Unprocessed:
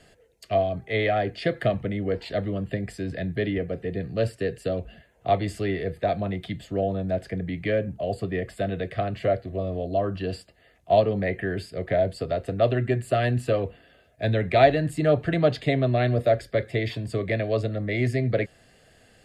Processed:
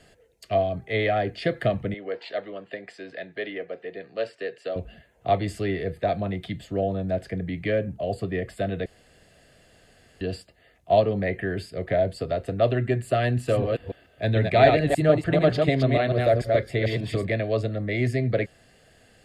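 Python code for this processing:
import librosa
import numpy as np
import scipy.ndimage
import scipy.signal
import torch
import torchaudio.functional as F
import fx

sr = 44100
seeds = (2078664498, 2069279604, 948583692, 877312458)

y = fx.bandpass_edges(x, sr, low_hz=510.0, high_hz=4500.0, at=(1.94, 4.76))
y = fx.reverse_delay(y, sr, ms=147, wet_db=-3.0, at=(13.33, 17.27))
y = fx.edit(y, sr, fx.room_tone_fill(start_s=8.86, length_s=1.35), tone=tone)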